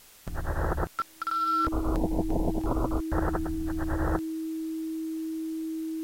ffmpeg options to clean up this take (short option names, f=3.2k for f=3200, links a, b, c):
-af "bandreject=f=320:w=30,afftdn=nr=30:nf=-36"